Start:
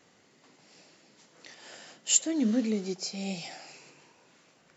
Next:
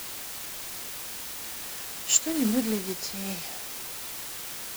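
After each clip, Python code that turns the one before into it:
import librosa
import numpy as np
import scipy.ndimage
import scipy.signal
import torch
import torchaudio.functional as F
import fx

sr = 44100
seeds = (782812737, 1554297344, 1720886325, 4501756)

y = fx.quant_dither(x, sr, seeds[0], bits=6, dither='triangular')
y = np.sign(y) * np.maximum(np.abs(y) - 10.0 ** (-38.5 / 20.0), 0.0)
y = y * librosa.db_to_amplitude(2.5)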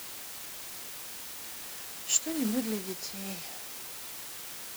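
y = fx.low_shelf(x, sr, hz=71.0, db=-6.5)
y = y * librosa.db_to_amplitude(-4.5)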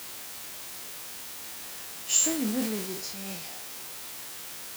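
y = fx.spec_trails(x, sr, decay_s=0.4)
y = scipy.signal.sosfilt(scipy.signal.butter(2, 44.0, 'highpass', fs=sr, output='sos'), y)
y = fx.sustainer(y, sr, db_per_s=53.0)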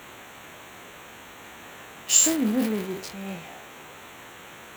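y = fx.wiener(x, sr, points=9)
y = y * librosa.db_to_amplitude(5.5)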